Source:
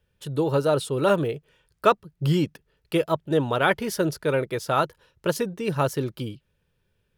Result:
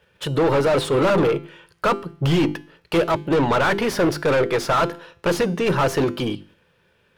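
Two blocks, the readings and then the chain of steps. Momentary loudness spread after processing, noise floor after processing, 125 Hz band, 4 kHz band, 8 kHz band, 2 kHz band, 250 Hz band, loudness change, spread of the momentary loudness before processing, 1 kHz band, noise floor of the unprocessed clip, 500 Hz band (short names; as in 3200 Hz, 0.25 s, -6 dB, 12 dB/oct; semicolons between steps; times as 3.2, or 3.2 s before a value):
8 LU, -62 dBFS, +3.0 dB, +5.5 dB, +3.0 dB, +5.0 dB, +5.0 dB, +4.0 dB, 8 LU, +4.0 dB, -72 dBFS, +4.5 dB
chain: bell 550 Hz -3 dB 2.1 oct; notches 50/100/150/200/250/300/350/400 Hz; in parallel at 0 dB: level quantiser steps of 14 dB; on the sum: overdrive pedal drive 32 dB, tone 1300 Hz, clips at -4 dBFS; resonator 170 Hz, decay 0.53 s, harmonics all, mix 50%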